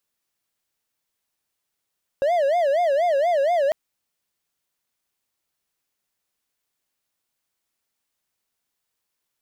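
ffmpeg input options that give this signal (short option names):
-f lavfi -i "aevalsrc='0.178*(1-4*abs(mod((628.5*t-84.5/(2*PI*4.2)*sin(2*PI*4.2*t))+0.25,1)-0.5))':d=1.5:s=44100"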